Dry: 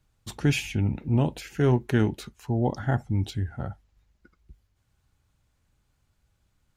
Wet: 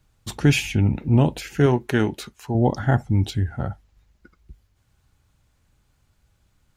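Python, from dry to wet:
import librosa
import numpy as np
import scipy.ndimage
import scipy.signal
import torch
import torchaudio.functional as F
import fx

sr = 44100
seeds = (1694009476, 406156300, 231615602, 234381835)

y = fx.low_shelf(x, sr, hz=220.0, db=-9.0, at=(1.66, 2.55))
y = y * 10.0 ** (6.0 / 20.0)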